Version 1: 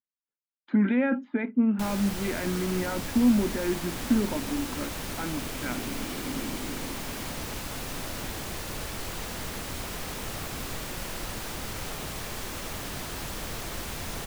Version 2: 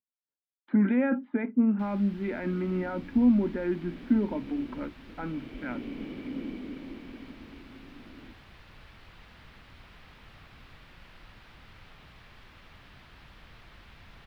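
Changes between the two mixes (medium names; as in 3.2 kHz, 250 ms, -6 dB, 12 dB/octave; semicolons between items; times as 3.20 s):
first sound: add amplifier tone stack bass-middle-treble 5-5-5; master: add distance through air 390 m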